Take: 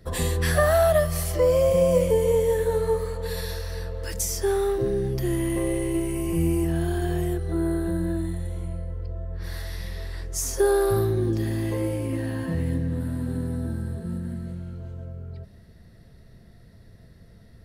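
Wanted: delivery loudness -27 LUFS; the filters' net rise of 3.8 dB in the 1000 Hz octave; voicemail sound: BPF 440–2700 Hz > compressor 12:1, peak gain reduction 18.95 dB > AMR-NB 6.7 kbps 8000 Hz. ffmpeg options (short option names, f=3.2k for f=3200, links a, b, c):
-af "highpass=440,lowpass=2.7k,equalizer=f=1k:t=o:g=6,acompressor=threshold=-34dB:ratio=12,volume=13dB" -ar 8000 -c:a libopencore_amrnb -b:a 6700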